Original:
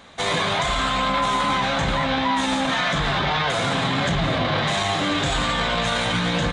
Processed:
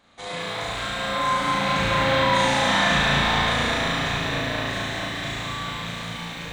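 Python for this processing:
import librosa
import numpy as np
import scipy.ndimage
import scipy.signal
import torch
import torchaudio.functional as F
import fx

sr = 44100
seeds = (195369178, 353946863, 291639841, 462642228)

p1 = fx.rattle_buzz(x, sr, strikes_db=-24.0, level_db=-15.0)
p2 = fx.doppler_pass(p1, sr, speed_mps=6, closest_m=4.5, pass_at_s=2.48)
p3 = p2 + fx.room_flutter(p2, sr, wall_m=6.1, rt60_s=1.2, dry=0)
p4 = fx.echo_crushed(p3, sr, ms=214, feedback_pct=80, bits=8, wet_db=-6.0)
y = p4 * librosa.db_to_amplitude(-3.5)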